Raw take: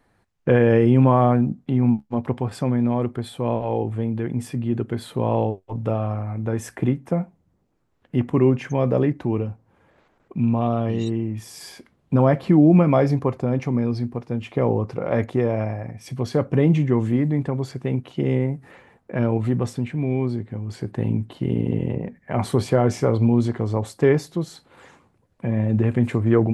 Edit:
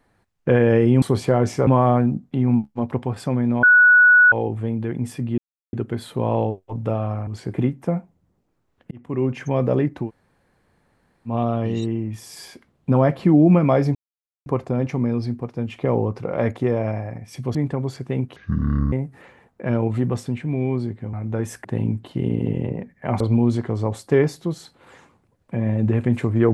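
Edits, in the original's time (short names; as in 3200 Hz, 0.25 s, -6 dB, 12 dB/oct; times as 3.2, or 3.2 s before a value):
2.98–3.67 bleep 1470 Hz -8.5 dBFS
4.73 insert silence 0.35 s
6.27–6.78 swap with 20.63–20.9
8.15–8.7 fade in
9.3–10.54 room tone, crossfade 0.10 s
13.19 insert silence 0.51 s
16.28–17.3 cut
18.11–18.42 speed 55%
22.46–23.11 move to 1.02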